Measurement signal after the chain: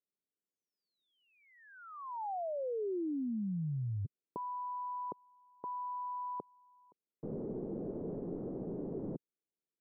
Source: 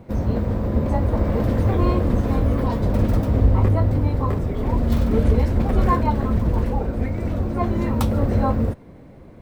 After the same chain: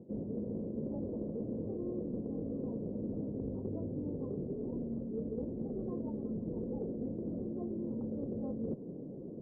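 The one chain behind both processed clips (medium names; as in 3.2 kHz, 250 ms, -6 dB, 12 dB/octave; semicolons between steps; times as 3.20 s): four-pole ladder low-pass 510 Hz, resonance 45%; resonant low shelf 110 Hz -13.5 dB, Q 1.5; reverse; compression 20:1, threshold -40 dBFS; reverse; trim +5.5 dB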